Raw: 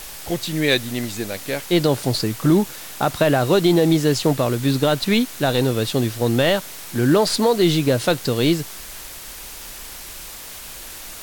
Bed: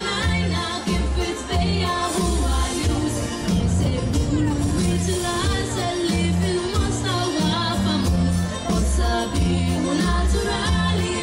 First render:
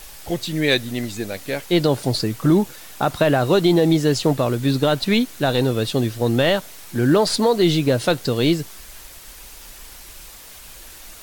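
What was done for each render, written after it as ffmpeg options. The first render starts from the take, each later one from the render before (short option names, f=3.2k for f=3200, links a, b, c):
-af "afftdn=nr=6:nf=-36"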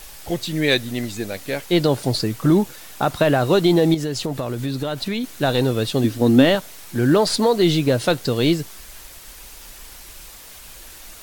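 -filter_complex "[0:a]asettb=1/sr,asplit=3[a][b][c];[a]atrim=end=3.944[d];[b]atrim=start=3.94:end=5.24,asetpts=PTS-STARTPTS,afade=t=in:d=0.004:c=qsin,afade=t=out:st=1.296:d=0.004:c=qsin,acompressor=threshold=-21dB:ratio=5:attack=3.2:release=140:knee=1:detection=peak[e];[c]atrim=start=5.236[f];[d][e]acrossfade=d=0.004:c1=hsin:c2=qsin[g];[g][f]acrossfade=d=0.004:c1=qsin:c2=hsin,asettb=1/sr,asplit=3[h][i][j];[h]atrim=end=6.044[k];[i]atrim=start=6.04:end=6.55,asetpts=PTS-STARTPTS,afade=t=in:d=0.004:c=qsin,afade=t=out:st=0.506:d=0.004:c=qsin,equalizer=f=270:w=3.6:g=14.5[l];[j]atrim=start=6.546[m];[k][l]acrossfade=d=0.004:c1=hsin:c2=qsin[n];[n][m]acrossfade=d=0.004:c1=qsin:c2=hsin"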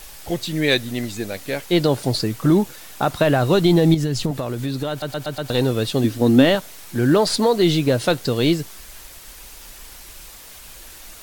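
-filter_complex "[0:a]asettb=1/sr,asplit=3[a][b][c];[a]atrim=end=3.164[d];[b]atrim=start=3.16:end=4.31,asetpts=PTS-STARTPTS,afade=t=in:d=0.004:c=qsin,afade=t=out:st=1.146:d=0.004:c=qsin,asubboost=boost=6.5:cutoff=250[e];[c]atrim=start=4.306[f];[d][e]acrossfade=d=0.004:c1=hsin:c2=qsin[g];[g][f]acrossfade=d=0.004:c1=qsin:c2=hsin,asplit=6[h][i][j][k][l][m];[h]atrim=end=5.022[n];[i]atrim=start=4.898:end=5.022[o];[j]atrim=start=4.898:end=5.022[p];[k]atrim=start=4.898:end=5.022[q];[l]atrim=start=4.898:end=5.022[r];[m]atrim=start=5.498[s];[n][o]acrossfade=d=0.004:c1=hsin:c2=hsin[t];[t][p]acrossfade=d=0.004:c1=hsin:c2=hsin[u];[u][q]acrossfade=d=0.004:c1=hsin:c2=hsin[v];[v][r]acrossfade=d=0.004:c1=hsin:c2=hsin[w];[w][s]acrossfade=d=0.004:c1=hsin:c2=hsin"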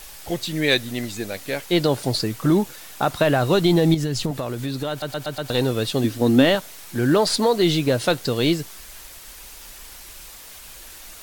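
-af "lowshelf=f=490:g=-3"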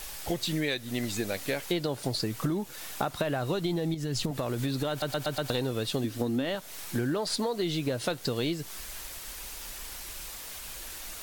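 -af "acompressor=threshold=-26dB:ratio=16"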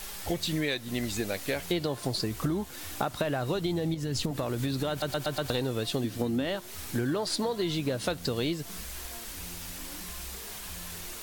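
-filter_complex "[1:a]volume=-27.5dB[a];[0:a][a]amix=inputs=2:normalize=0"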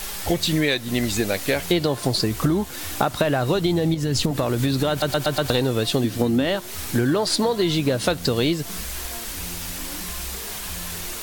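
-af "volume=9dB"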